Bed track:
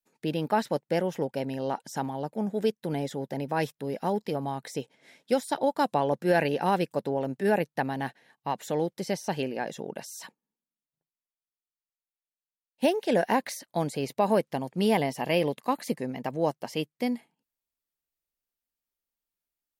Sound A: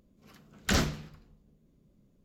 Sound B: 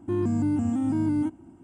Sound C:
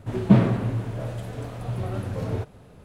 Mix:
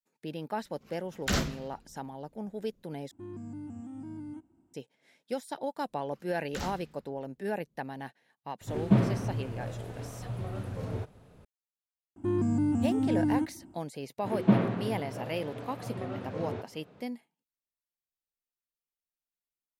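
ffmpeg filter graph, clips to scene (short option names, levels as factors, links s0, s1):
-filter_complex "[1:a]asplit=2[s0][s1];[2:a]asplit=2[s2][s3];[3:a]asplit=2[s4][s5];[0:a]volume=0.355[s6];[s5]highpass=170,lowpass=4300[s7];[s6]asplit=2[s8][s9];[s8]atrim=end=3.114[s10];[s2]atrim=end=1.63,asetpts=PTS-STARTPTS,volume=0.141[s11];[s9]atrim=start=4.736[s12];[s0]atrim=end=2.24,asetpts=PTS-STARTPTS,volume=0.794,afade=t=in:d=0.004:c=hsin,afade=t=out:st=2.236:d=0.004:c=hsin,adelay=590[s13];[s1]atrim=end=2.24,asetpts=PTS-STARTPTS,volume=0.251,afade=t=in:d=0.004:c=hsin,afade=t=out:st=2.236:d=0.004:c=hsin,adelay=5860[s14];[s4]atrim=end=2.84,asetpts=PTS-STARTPTS,volume=0.447,afade=t=in:d=0.004:c=hsin,afade=t=out:st=2.836:d=0.004:c=hsin,adelay=8610[s15];[s3]atrim=end=1.63,asetpts=PTS-STARTPTS,volume=0.75,afade=t=in:d=0.004:c=hsin,afade=t=out:st=1.626:d=0.004:c=hsin,adelay=12160[s16];[s7]atrim=end=2.84,asetpts=PTS-STARTPTS,volume=0.596,afade=t=in:d=0.004:c=hsin,afade=t=out:st=2.836:d=0.004:c=hsin,adelay=14180[s17];[s10][s11]acrossfade=d=0.004:c1=hsin:c2=hsin[s18];[s18][s12]acrossfade=d=0.004:c1=hsin:c2=hsin[s19];[s19][s13][s14][s15][s16][s17]amix=inputs=6:normalize=0"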